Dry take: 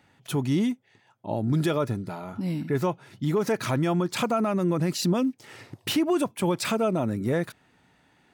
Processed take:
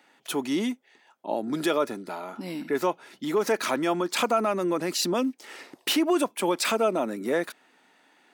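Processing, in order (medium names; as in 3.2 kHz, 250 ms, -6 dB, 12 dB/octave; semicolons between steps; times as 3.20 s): high-pass 240 Hz 24 dB/octave; bass shelf 370 Hz -5.5 dB; trim +3.5 dB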